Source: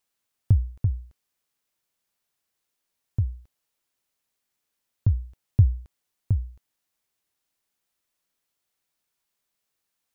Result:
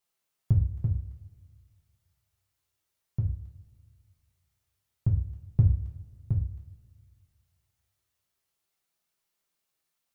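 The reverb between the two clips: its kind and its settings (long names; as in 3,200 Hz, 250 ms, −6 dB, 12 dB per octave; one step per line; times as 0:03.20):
coupled-rooms reverb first 0.43 s, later 2 s, from −19 dB, DRR −2.5 dB
level −5.5 dB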